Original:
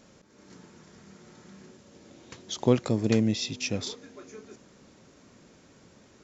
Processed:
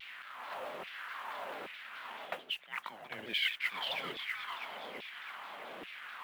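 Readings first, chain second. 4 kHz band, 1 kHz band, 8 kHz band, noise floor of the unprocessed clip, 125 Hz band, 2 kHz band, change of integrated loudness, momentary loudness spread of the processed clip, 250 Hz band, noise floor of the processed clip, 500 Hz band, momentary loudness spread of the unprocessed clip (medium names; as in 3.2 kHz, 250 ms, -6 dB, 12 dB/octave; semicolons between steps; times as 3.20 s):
+0.5 dB, +3.0 dB, no reading, -57 dBFS, -31.0 dB, +6.0 dB, -12.0 dB, 13 LU, -25.5 dB, -52 dBFS, -14.5 dB, 22 LU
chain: crackle 390 per s -49 dBFS; on a send: thinning echo 327 ms, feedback 62%, high-pass 480 Hz, level -17 dB; on the sum: mistuned SSB -320 Hz 370–3600 Hz; reverse; compression 10:1, threshold -47 dBFS, peak gain reduction 26.5 dB; reverse; LFO high-pass saw down 1.2 Hz 390–2500 Hz; peaking EQ 200 Hz +6 dB 0.43 oct; pre-echo 120 ms -22 dB; modulation noise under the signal 23 dB; vibrato with a chosen wave saw down 4.6 Hz, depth 160 cents; trim +14 dB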